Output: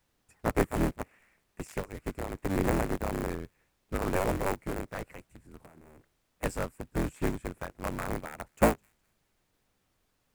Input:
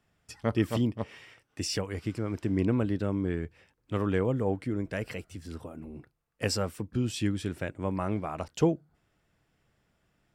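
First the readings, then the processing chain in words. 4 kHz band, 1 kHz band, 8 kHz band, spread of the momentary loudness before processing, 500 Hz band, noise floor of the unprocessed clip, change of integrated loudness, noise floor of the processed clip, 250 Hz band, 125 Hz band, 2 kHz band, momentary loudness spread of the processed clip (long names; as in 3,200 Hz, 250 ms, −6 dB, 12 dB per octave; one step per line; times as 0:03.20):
−9.0 dB, +4.5 dB, −2.5 dB, 15 LU, −0.5 dB, −75 dBFS, −2.0 dB, −76 dBFS, −4.0 dB, −5.0 dB, +2.5 dB, 14 LU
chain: sub-harmonics by changed cycles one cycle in 3, inverted
flat-topped bell 4,200 Hz −14.5 dB 1.2 octaves
on a send: delay with a high-pass on its return 208 ms, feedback 33%, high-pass 2,400 Hz, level −20 dB
on the sum: background noise pink −63 dBFS
in parallel at −8 dB: bit reduction 5 bits
on the sum: expander for the loud parts 1.5 to 1, over −39 dBFS
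level −1 dB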